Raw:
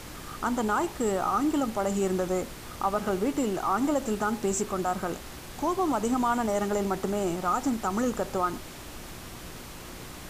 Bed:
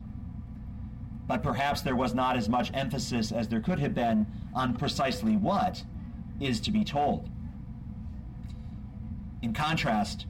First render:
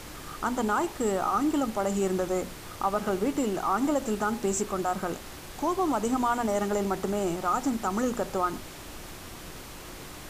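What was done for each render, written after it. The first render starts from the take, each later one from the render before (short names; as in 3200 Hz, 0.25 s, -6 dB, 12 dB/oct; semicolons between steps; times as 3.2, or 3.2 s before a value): de-hum 60 Hz, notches 4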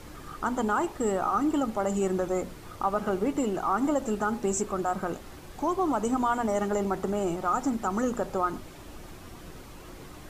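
denoiser 8 dB, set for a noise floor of -43 dBFS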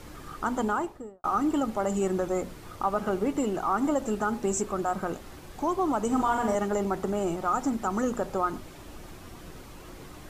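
0.62–1.24 studio fade out; 6.07–6.55 flutter echo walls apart 7.3 m, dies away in 0.49 s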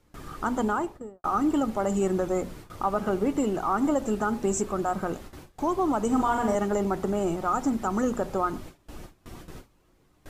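gate with hold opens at -33 dBFS; low shelf 440 Hz +3 dB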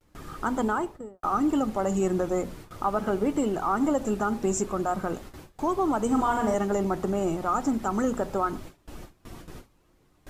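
vibrato 0.39 Hz 37 cents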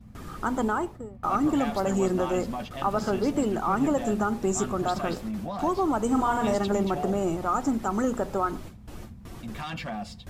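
add bed -7 dB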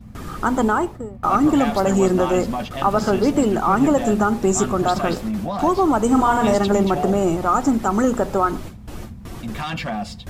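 gain +8 dB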